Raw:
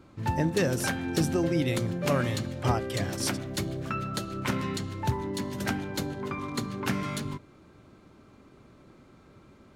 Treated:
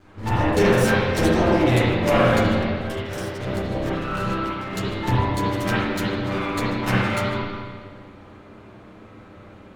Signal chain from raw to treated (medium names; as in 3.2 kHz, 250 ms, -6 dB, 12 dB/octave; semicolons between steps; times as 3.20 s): comb filter that takes the minimum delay 10 ms; 2.42–4.73 s: compressor with a negative ratio -37 dBFS, ratio -0.5; spring tank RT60 1.6 s, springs 32/49/58 ms, chirp 50 ms, DRR -9 dB; trim +2.5 dB